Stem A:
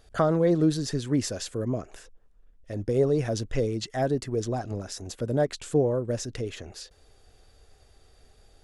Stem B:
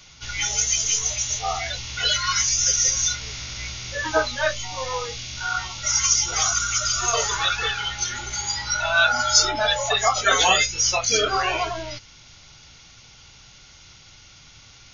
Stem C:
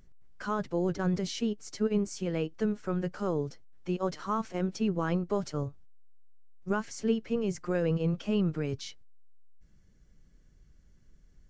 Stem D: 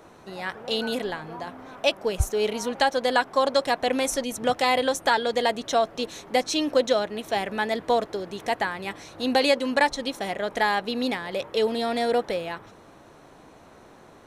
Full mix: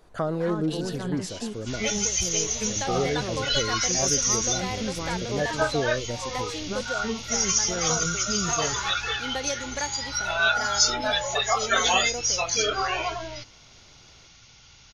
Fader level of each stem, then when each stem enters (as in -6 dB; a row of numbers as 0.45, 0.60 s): -4.5, -4.0, -3.5, -11.5 dB; 0.00, 1.45, 0.00, 0.00 s